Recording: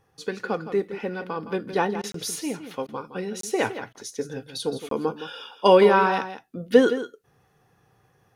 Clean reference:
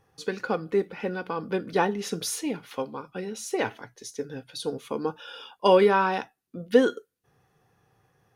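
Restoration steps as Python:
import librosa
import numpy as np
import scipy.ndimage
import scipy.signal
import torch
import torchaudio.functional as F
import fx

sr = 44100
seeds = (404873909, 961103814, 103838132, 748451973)

y = fx.fix_interpolate(x, sr, at_s=(2.12, 3.41, 4.89), length_ms=23.0)
y = fx.fix_interpolate(y, sr, at_s=(2.02, 2.87, 3.93), length_ms=15.0)
y = fx.fix_echo_inverse(y, sr, delay_ms=165, level_db=-11.5)
y = fx.gain(y, sr, db=fx.steps((0.0, 0.0), (2.93, -3.0)))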